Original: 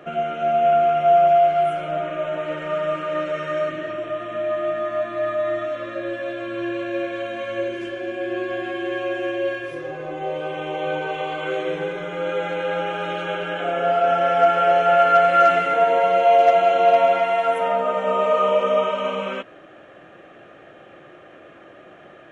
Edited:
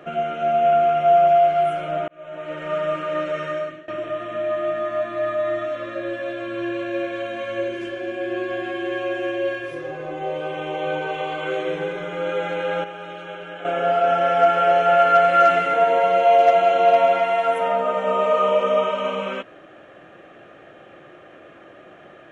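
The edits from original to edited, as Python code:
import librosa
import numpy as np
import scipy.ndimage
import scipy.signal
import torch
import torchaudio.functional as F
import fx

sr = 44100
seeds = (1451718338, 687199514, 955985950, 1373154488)

y = fx.edit(x, sr, fx.fade_in_span(start_s=2.08, length_s=0.66),
    fx.fade_out_to(start_s=3.45, length_s=0.43, floor_db=-21.0),
    fx.clip_gain(start_s=12.84, length_s=0.81, db=-8.5), tone=tone)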